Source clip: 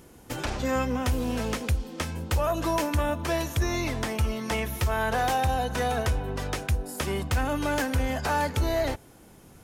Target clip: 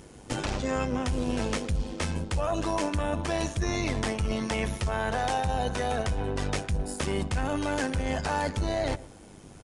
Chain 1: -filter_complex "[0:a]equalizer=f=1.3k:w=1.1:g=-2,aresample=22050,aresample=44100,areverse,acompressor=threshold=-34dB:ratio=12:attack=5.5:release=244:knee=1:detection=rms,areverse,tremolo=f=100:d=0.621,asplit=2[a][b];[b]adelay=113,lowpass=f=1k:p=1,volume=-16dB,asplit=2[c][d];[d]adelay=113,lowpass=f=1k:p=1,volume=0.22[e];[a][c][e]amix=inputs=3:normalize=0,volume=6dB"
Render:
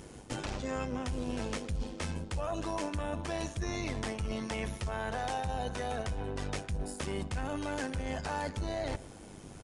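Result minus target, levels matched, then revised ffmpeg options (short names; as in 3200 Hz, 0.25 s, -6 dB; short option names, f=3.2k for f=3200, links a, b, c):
compressor: peak gain reduction +7 dB
-filter_complex "[0:a]equalizer=f=1.3k:w=1.1:g=-2,aresample=22050,aresample=44100,areverse,acompressor=threshold=-26.5dB:ratio=12:attack=5.5:release=244:knee=1:detection=rms,areverse,tremolo=f=100:d=0.621,asplit=2[a][b];[b]adelay=113,lowpass=f=1k:p=1,volume=-16dB,asplit=2[c][d];[d]adelay=113,lowpass=f=1k:p=1,volume=0.22[e];[a][c][e]amix=inputs=3:normalize=0,volume=6dB"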